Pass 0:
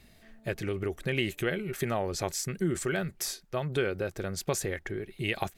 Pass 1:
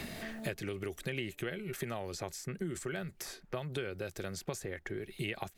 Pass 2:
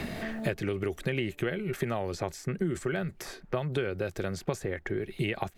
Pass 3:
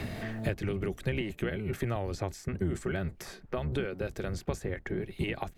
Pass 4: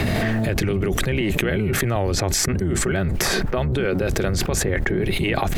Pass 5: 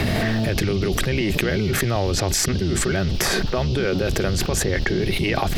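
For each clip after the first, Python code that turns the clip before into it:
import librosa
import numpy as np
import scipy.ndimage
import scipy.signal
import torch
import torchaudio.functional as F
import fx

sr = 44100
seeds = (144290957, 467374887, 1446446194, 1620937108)

y1 = fx.band_squash(x, sr, depth_pct=100)
y1 = F.gain(torch.from_numpy(y1), -8.5).numpy()
y2 = fx.high_shelf(y1, sr, hz=3300.0, db=-10.5)
y2 = F.gain(torch.from_numpy(y2), 8.0).numpy()
y3 = fx.octave_divider(y2, sr, octaves=1, level_db=0.0)
y3 = F.gain(torch.from_numpy(y3), -3.0).numpy()
y4 = fx.env_flatten(y3, sr, amount_pct=100)
y4 = F.gain(torch.from_numpy(y4), 5.5).numpy()
y5 = fx.dmg_noise_band(y4, sr, seeds[0], low_hz=2600.0, high_hz=5400.0, level_db=-39.0)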